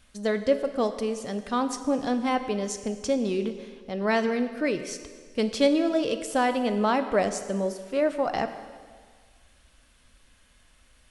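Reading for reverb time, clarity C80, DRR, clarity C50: 1.7 s, 11.5 dB, 9.0 dB, 10.5 dB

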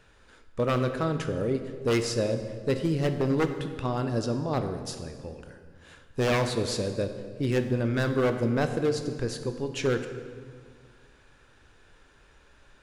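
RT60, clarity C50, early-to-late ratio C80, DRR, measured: 1.9 s, 9.0 dB, 10.0 dB, 7.5 dB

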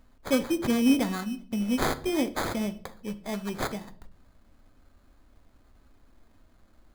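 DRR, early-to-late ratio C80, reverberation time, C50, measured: 11.0 dB, 21.0 dB, 0.60 s, 17.0 dB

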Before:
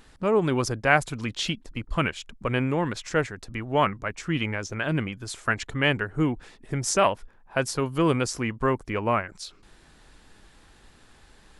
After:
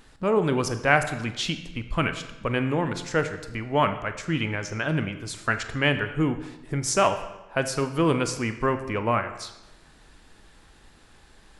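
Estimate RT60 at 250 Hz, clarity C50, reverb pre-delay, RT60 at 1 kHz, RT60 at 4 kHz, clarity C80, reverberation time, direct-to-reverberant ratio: 1.0 s, 10.5 dB, 23 ms, 0.95 s, 0.85 s, 12.5 dB, 1.0 s, 8.5 dB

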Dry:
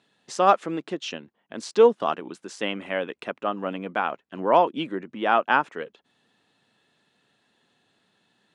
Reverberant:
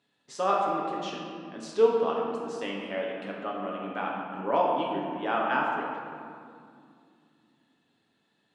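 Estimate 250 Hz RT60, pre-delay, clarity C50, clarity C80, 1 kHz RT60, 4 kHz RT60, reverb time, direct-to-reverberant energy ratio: 3.8 s, 7 ms, 0.5 dB, 2.5 dB, 2.2 s, 1.2 s, 2.3 s, −3.0 dB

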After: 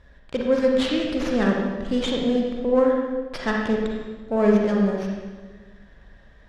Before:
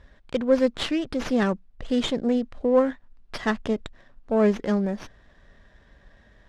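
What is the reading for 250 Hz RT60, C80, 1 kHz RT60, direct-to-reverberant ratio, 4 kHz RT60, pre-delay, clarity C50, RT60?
1.6 s, 3.0 dB, 1.3 s, −1.0 dB, 1.2 s, 37 ms, 0.5 dB, 1.4 s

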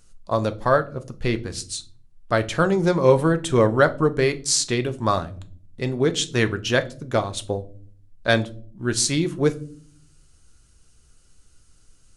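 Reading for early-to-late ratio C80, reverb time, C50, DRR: 24.0 dB, non-exponential decay, 19.0 dB, 9.0 dB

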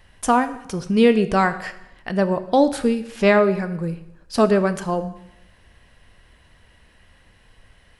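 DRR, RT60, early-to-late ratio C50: 10.5 dB, 0.85 s, 13.5 dB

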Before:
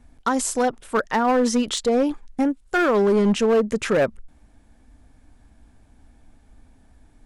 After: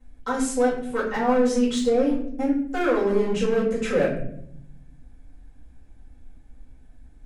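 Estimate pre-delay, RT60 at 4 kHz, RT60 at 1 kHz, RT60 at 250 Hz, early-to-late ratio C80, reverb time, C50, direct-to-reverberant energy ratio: 4 ms, 0.40 s, 0.55 s, 1.4 s, 9.0 dB, 0.70 s, 5.0 dB, −9.0 dB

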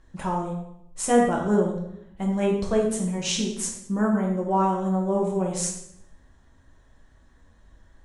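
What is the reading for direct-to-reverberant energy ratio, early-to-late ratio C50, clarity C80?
−1.5 dB, 4.0 dB, 7.5 dB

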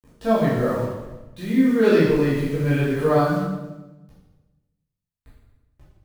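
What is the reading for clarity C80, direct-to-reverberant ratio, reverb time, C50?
3.5 dB, −9.5 dB, 1.1 s, 0.5 dB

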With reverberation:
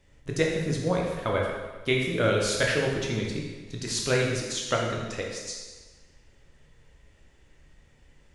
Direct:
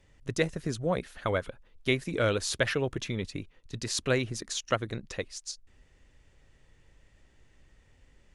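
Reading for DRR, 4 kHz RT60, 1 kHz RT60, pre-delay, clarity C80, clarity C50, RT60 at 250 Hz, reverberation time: −1.5 dB, 1.2 s, 1.4 s, 11 ms, 4.0 dB, 2.0 dB, 1.3 s, 1.4 s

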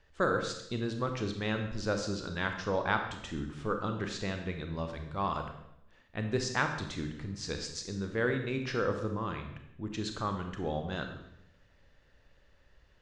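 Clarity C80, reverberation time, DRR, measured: 9.0 dB, 0.80 s, 5.0 dB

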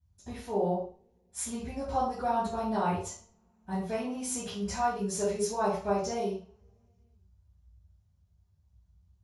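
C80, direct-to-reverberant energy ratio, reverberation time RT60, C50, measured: 7.0 dB, −18.5 dB, 0.45 s, 2.5 dB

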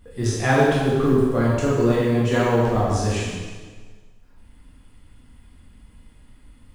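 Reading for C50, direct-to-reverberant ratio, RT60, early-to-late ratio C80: −1.0 dB, −8.0 dB, 1.5 s, 1.0 dB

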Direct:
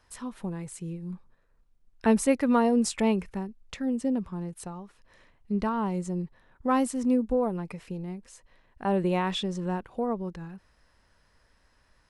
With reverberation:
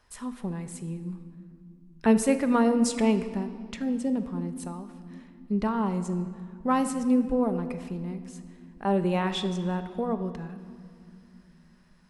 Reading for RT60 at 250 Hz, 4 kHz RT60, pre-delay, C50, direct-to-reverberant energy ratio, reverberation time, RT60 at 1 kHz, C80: 4.0 s, 1.6 s, 5 ms, 11.0 dB, 8.5 dB, 2.5 s, 2.3 s, 12.0 dB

